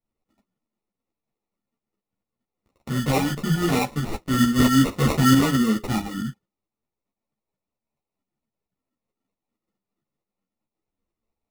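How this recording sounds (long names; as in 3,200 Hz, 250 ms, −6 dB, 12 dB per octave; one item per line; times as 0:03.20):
phaser sweep stages 8, 0.23 Hz, lowest notch 480–1,300 Hz
aliases and images of a low sample rate 1,600 Hz, jitter 0%
tremolo saw up 4.5 Hz, depth 55%
a shimmering, thickened sound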